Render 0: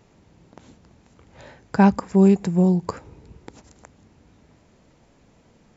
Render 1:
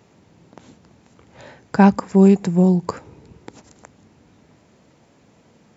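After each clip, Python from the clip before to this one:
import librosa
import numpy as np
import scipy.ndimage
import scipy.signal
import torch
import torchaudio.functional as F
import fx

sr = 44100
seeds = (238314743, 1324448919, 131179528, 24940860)

y = scipy.signal.sosfilt(scipy.signal.butter(2, 98.0, 'highpass', fs=sr, output='sos'), x)
y = y * 10.0 ** (3.0 / 20.0)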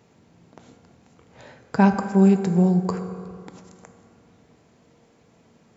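y = fx.rev_fdn(x, sr, rt60_s=2.3, lf_ratio=0.85, hf_ratio=0.5, size_ms=13.0, drr_db=6.5)
y = y * 10.0 ** (-4.0 / 20.0)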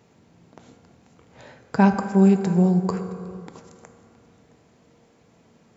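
y = x + 10.0 ** (-20.5 / 20.0) * np.pad(x, (int(667 * sr / 1000.0), 0))[:len(x)]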